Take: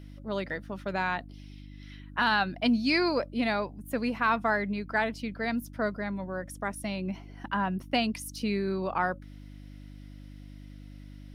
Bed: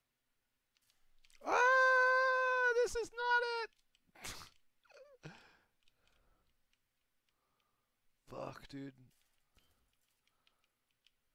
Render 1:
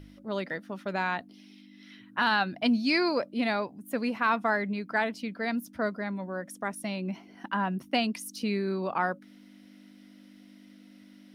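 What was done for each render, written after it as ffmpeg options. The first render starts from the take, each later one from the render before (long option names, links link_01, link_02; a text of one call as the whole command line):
ffmpeg -i in.wav -af "bandreject=frequency=50:width_type=h:width=4,bandreject=frequency=100:width_type=h:width=4,bandreject=frequency=150:width_type=h:width=4" out.wav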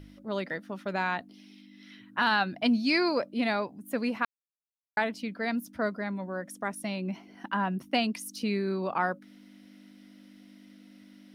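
ffmpeg -i in.wav -filter_complex "[0:a]asplit=3[link_01][link_02][link_03];[link_01]atrim=end=4.25,asetpts=PTS-STARTPTS,afade=type=out:start_time=4.246:duration=0.004:curve=hsin[link_04];[link_02]atrim=start=4.25:end=4.97,asetpts=PTS-STARTPTS,volume=0[link_05];[link_03]atrim=start=4.97,asetpts=PTS-STARTPTS,afade=type=in:duration=0.004:curve=hsin[link_06];[link_04][link_05][link_06]concat=n=3:v=0:a=1" out.wav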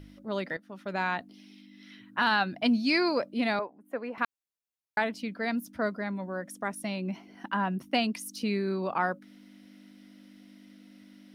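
ffmpeg -i in.wav -filter_complex "[0:a]asettb=1/sr,asplit=3[link_01][link_02][link_03];[link_01]atrim=end=3.594[link_04];[link_02]atrim=start=3.59:end=4.18,asetpts=PTS-STARTPTS,afade=type=in:duration=0.004:curve=qsin,afade=type=out:start_time=0.586:duration=0.004:curve=qsin,acrossover=split=330 2000:gain=0.112 1 0.0891[link_05][link_06][link_07];[link_05][link_06][link_07]amix=inputs=3:normalize=0[link_08];[link_03]atrim=start=4.176[link_09];[link_04][link_08]acrossfade=duration=0.004:curve1=hsin:curve2=qsin[link_10];[link_10][link_09]acrossfade=duration=0.004:curve1=qsin:curve2=hsin,asplit=2[link_11][link_12];[link_11]atrim=end=0.57,asetpts=PTS-STARTPTS,afade=type=out:start_time=0.566:duration=0.004:curve=hsin:silence=0.223872[link_13];[link_12]atrim=start=0.57,asetpts=PTS-STARTPTS,afade=type=in:duration=0.46:silence=0.223872[link_14];[link_13][link_14]concat=n=2:v=0:a=1" out.wav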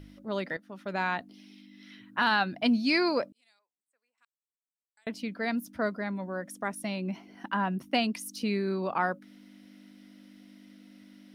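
ffmpeg -i in.wav -filter_complex "[0:a]asettb=1/sr,asplit=3[link_01][link_02][link_03];[link_01]atrim=end=3.324[link_04];[link_02]atrim=start=3.32:end=5.07,asetpts=PTS-STARTPTS,afade=type=in:duration=0.004:curve=qsin,afade=type=out:start_time=1.746:duration=0.004:curve=qsin,bandpass=frequency=7900:width_type=q:width=15[link_05];[link_03]atrim=start=5.066[link_06];[link_04][link_05]acrossfade=duration=0.004:curve1=hsin:curve2=qsin[link_07];[link_07][link_06]acrossfade=duration=0.004:curve1=qsin:curve2=hsin" out.wav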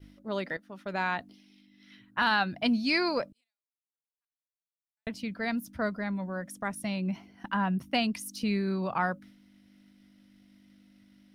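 ffmpeg -i in.wav -af "agate=range=-33dB:threshold=-46dB:ratio=3:detection=peak,asubboost=boost=6:cutoff=120" out.wav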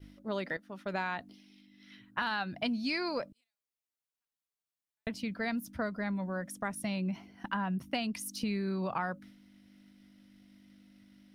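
ffmpeg -i in.wav -af "acompressor=threshold=-30dB:ratio=6" out.wav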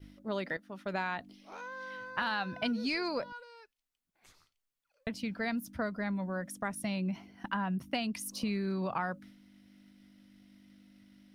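ffmpeg -i in.wav -i bed.wav -filter_complex "[1:a]volume=-15dB[link_01];[0:a][link_01]amix=inputs=2:normalize=0" out.wav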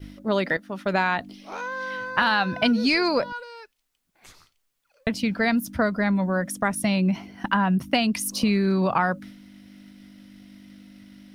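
ffmpeg -i in.wav -af "volume=12dB" out.wav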